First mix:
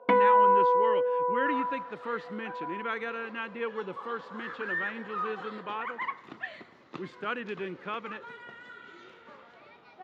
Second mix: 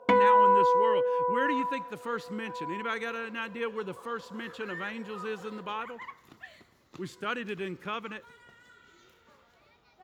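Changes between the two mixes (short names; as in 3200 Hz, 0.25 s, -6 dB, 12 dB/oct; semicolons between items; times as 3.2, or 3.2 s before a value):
second sound -10.0 dB; master: remove BPF 190–2900 Hz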